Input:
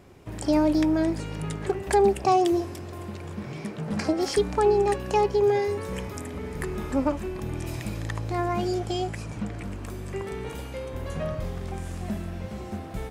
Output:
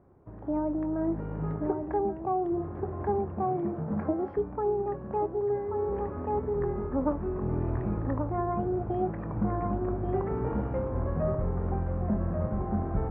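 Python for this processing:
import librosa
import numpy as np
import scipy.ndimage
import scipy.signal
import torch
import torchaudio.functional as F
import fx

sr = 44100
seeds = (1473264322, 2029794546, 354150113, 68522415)

y = scipy.signal.sosfilt(scipy.signal.butter(4, 1300.0, 'lowpass', fs=sr, output='sos'), x)
y = fx.doubler(y, sr, ms=24.0, db=-13.5)
y = y + 10.0 ** (-7.5 / 20.0) * np.pad(y, (int(1134 * sr / 1000.0), 0))[:len(y)]
y = fx.rider(y, sr, range_db=10, speed_s=0.5)
y = y * 10.0 ** (-4.0 / 20.0)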